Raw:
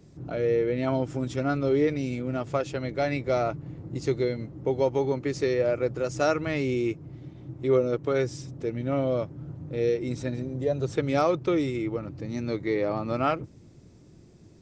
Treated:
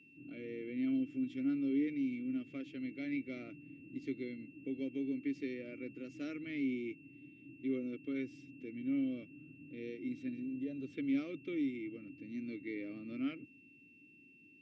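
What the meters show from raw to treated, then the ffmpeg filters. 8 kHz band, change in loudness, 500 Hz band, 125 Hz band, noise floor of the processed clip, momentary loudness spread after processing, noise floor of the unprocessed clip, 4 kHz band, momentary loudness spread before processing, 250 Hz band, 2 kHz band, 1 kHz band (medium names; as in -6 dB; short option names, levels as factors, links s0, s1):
no reading, -12.0 dB, -21.5 dB, -23.0 dB, -62 dBFS, 14 LU, -52 dBFS, -15.5 dB, 10 LU, -6.0 dB, -12.0 dB, under -30 dB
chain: -filter_complex "[0:a]asplit=3[s0][s1][s2];[s0]bandpass=f=270:t=q:w=8,volume=1[s3];[s1]bandpass=f=2290:t=q:w=8,volume=0.501[s4];[s2]bandpass=f=3010:t=q:w=8,volume=0.355[s5];[s3][s4][s5]amix=inputs=3:normalize=0,aeval=exprs='val(0)+0.00112*sin(2*PI*2700*n/s)':c=same,volume=0.794"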